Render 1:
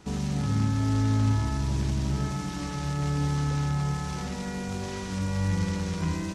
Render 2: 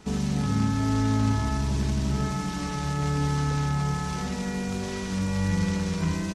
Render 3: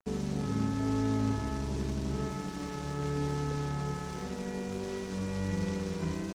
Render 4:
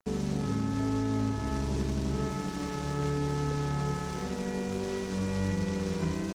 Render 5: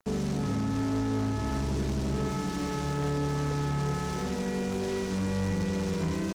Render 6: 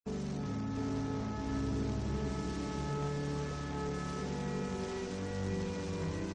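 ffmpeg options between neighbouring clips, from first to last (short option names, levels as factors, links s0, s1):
-af "aecho=1:1:4.6:0.34,volume=1.26"
-af "equalizer=f=400:w=1.2:g=9.5,aeval=exprs='sgn(val(0))*max(abs(val(0))-0.0133,0)':c=same,volume=0.398"
-af "alimiter=limit=0.0631:level=0:latency=1:release=260,volume=1.5"
-af "asoftclip=type=tanh:threshold=0.0355,volume=1.78"
-af "afftfilt=real='re*gte(hypot(re,im),0.00398)':imag='im*gte(hypot(re,im),0.00398)':win_size=1024:overlap=0.75,aecho=1:1:705:0.668,volume=0.398"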